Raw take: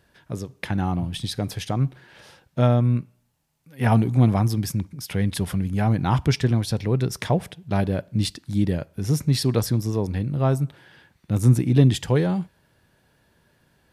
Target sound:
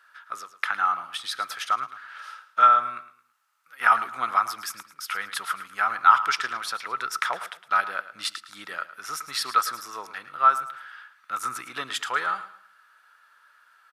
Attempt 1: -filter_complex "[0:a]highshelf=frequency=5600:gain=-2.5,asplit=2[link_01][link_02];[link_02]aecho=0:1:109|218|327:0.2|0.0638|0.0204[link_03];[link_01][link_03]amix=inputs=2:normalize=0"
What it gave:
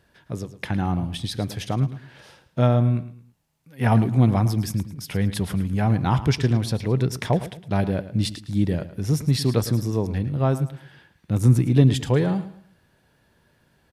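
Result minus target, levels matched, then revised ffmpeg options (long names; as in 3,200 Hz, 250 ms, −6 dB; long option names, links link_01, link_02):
1,000 Hz band −12.0 dB
-filter_complex "[0:a]highpass=frequency=1300:width_type=q:width=13,highshelf=frequency=5600:gain=-2.5,asplit=2[link_01][link_02];[link_02]aecho=0:1:109|218|327:0.2|0.0638|0.0204[link_03];[link_01][link_03]amix=inputs=2:normalize=0"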